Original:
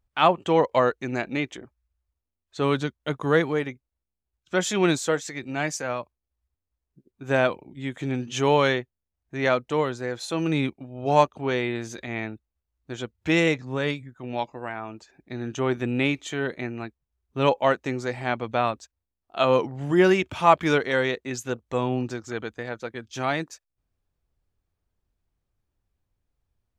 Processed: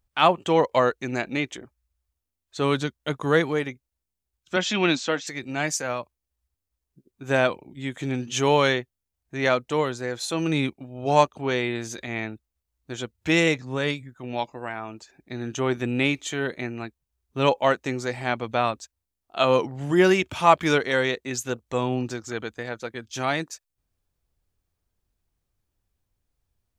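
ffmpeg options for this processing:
-filter_complex "[0:a]asettb=1/sr,asplit=3[s0][s1][s2];[s0]atrim=end=4.564[s3];[s1]atrim=start=4.56:end=5.27,asetpts=PTS-STARTPTS,afade=t=in:d=0.004:c=qsin,afade=t=out:st=0.706:d=0.004:c=qsin,highpass=190,equalizer=f=240:t=q:w=4:g=9,equalizer=f=420:t=q:w=4:g=-7,equalizer=f=2700:t=q:w=4:g=6,lowpass=f=5300:w=0.5412,lowpass=f=5300:w=1.3066[s4];[s2]atrim=start=5.266[s5];[s3][s4]acrossfade=d=0.004:c1=hsin:c2=qsin[s6];[s6][s5]acrossfade=d=0.004:c1=qsin:c2=hsin,highshelf=f=3900:g=7"

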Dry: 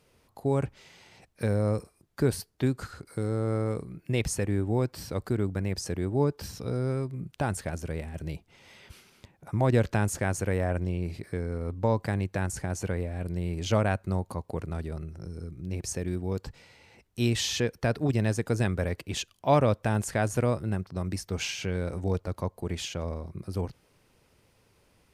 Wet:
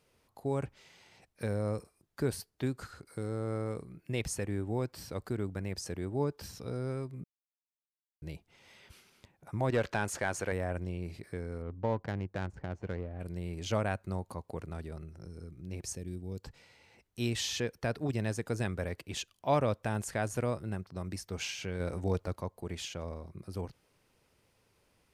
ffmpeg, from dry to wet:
-filter_complex "[0:a]asettb=1/sr,asplit=3[s0][s1][s2];[s0]atrim=end=9.704[s3];[s1]atrim=start=9.7:end=10.52,asetpts=PTS-STARTPTS,afade=t=in:d=0.004:c=qsin,afade=t=out:st=0.816:d=0.004:c=qsin,asplit=2[s4][s5];[s5]highpass=f=720:p=1,volume=4.47,asoftclip=type=tanh:threshold=0.237[s6];[s4][s6]amix=inputs=2:normalize=0,lowpass=f=3300:p=1,volume=0.501[s7];[s2]atrim=start=10.516[s8];[s3][s7]acrossfade=d=0.004:c1=hsin:c2=qsin[s9];[s9][s8]acrossfade=d=0.004:c1=qsin:c2=hsin,asplit=3[s10][s11][s12];[s10]afade=t=out:st=11.61:d=0.02[s13];[s11]adynamicsmooth=sensitivity=3:basefreq=1000,afade=t=in:st=11.61:d=0.02,afade=t=out:st=13.19:d=0.02[s14];[s12]afade=t=in:st=13.19:d=0.02[s15];[s13][s14][s15]amix=inputs=3:normalize=0,asplit=3[s16][s17][s18];[s16]afade=t=out:st=15.94:d=0.02[s19];[s17]equalizer=f=1200:w=0.52:g=-14,afade=t=in:st=15.94:d=0.02,afade=t=out:st=16.42:d=0.02[s20];[s18]afade=t=in:st=16.42:d=0.02[s21];[s19][s20][s21]amix=inputs=3:normalize=0,asplit=5[s22][s23][s24][s25][s26];[s22]atrim=end=7.24,asetpts=PTS-STARTPTS,afade=t=out:st=7.236:d=0.004:c=hsin[s27];[s23]atrim=start=7.24:end=8.22,asetpts=PTS-STARTPTS,volume=0[s28];[s24]atrim=start=8.22:end=21.802,asetpts=PTS-STARTPTS,afade=t=in:d=0.004:c=hsin[s29];[s25]atrim=start=21.798:end=22.362,asetpts=PTS-STARTPTS,volume=1.58[s30];[s26]atrim=start=22.358[s31];[s27][s28][s29]concat=n=3:v=0:a=1[s32];[s32][s30]acrossfade=d=0.004:c1=hsin:c2=hsin[s33];[s33][s31]acrossfade=d=0.004:c1=hsin:c2=hsin,lowshelf=f=330:g=-3,volume=0.562"

